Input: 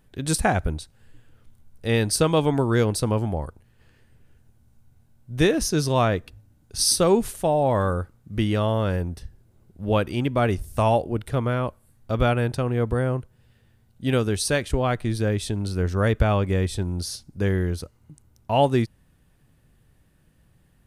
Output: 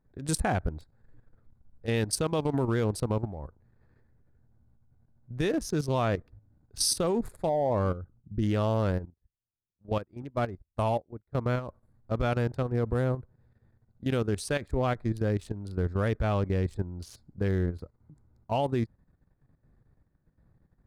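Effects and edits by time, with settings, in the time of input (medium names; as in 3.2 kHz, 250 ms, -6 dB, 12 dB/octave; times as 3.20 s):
7.49–8.43 s: resonances exaggerated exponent 1.5
9.05–11.35 s: upward expansion 2.5:1, over -41 dBFS
whole clip: local Wiener filter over 15 samples; peak limiter -12 dBFS; level held to a coarse grid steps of 12 dB; trim -2 dB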